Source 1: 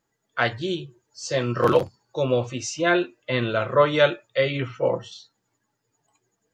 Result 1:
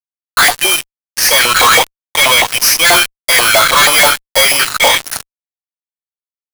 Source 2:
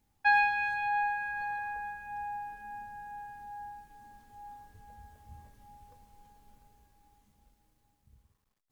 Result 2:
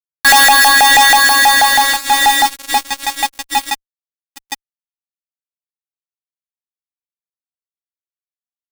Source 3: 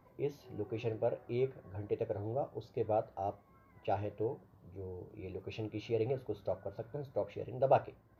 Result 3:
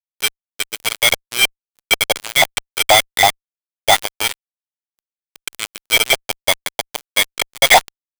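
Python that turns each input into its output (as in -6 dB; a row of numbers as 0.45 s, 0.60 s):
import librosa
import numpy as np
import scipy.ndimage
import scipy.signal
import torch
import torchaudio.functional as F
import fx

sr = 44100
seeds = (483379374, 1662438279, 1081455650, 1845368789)

y = fx.bit_reversed(x, sr, seeds[0], block=16)
y = fx.peak_eq(y, sr, hz=4000.0, db=10.5, octaves=2.7)
y = fx.filter_lfo_highpass(y, sr, shape='saw_up', hz=6.2, low_hz=730.0, high_hz=2100.0, q=4.0)
y = fx.fuzz(y, sr, gain_db=36.0, gate_db=-33.0)
y = librosa.util.normalize(y) * 10.0 ** (-3 / 20.0)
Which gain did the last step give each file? +7.0 dB, +7.5 dB, +8.0 dB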